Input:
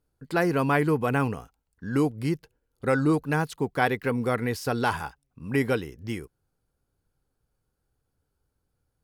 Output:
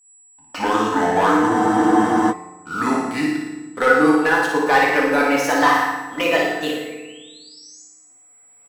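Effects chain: gliding tape speed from 53% -> 155%; recorder AGC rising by 8.1 dB/s; high-pass 1 kHz 12 dB/octave; tilt EQ -3 dB/octave; comb 4 ms, depth 32%; waveshaping leveller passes 2; whistle 7.8 kHz -60 dBFS; flange 0.87 Hz, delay 6 ms, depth 5.1 ms, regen -75%; painted sound rise, 6.48–7.84 s, 1.4–7.3 kHz -57 dBFS; flutter echo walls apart 9.7 m, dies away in 0.72 s; FDN reverb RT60 1.2 s, low-frequency decay 1.55×, high-frequency decay 0.6×, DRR -1.5 dB; spectral freeze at 1.52 s, 0.80 s; trim +8 dB

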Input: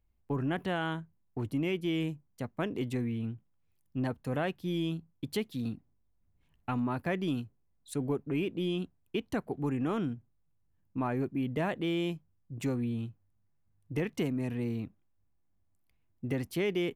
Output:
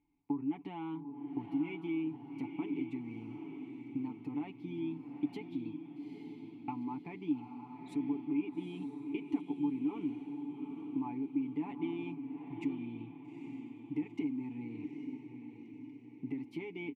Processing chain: bass shelf 83 Hz +6.5 dB; comb 7 ms; compression 6:1, threshold -42 dBFS, peak gain reduction 18 dB; vowel filter u; echo that smears into a reverb 849 ms, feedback 49%, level -7 dB; trim +15 dB

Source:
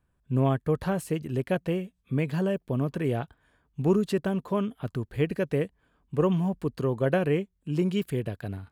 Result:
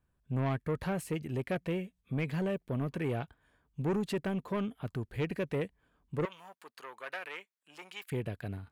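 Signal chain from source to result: saturation -22 dBFS, distortion -14 dB; 6.25–8.12 s: Chebyshev high-pass 1.2 kHz, order 2; dynamic bell 2.2 kHz, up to +6 dB, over -56 dBFS, Q 2.4; trim -4 dB

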